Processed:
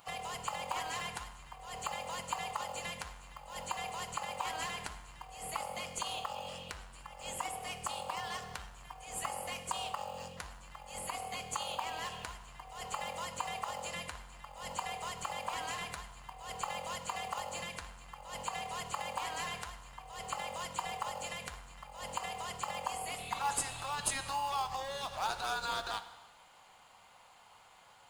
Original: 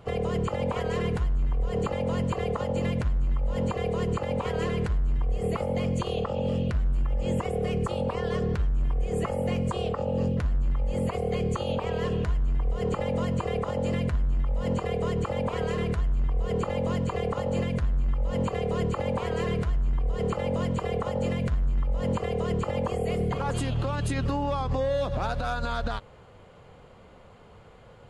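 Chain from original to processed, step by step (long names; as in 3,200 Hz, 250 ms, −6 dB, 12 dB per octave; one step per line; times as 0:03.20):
first-order pre-emphasis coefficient 0.9
healed spectral selection 0:23.21–0:23.90, 2,200–4,600 Hz after
low shelf with overshoot 560 Hz −14 dB, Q 3
in parallel at −10.5 dB: sample-rate reduction 1,900 Hz, jitter 0%
on the sum: dense smooth reverb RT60 1.2 s, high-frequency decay 0.95×, DRR 10 dB
level +6.5 dB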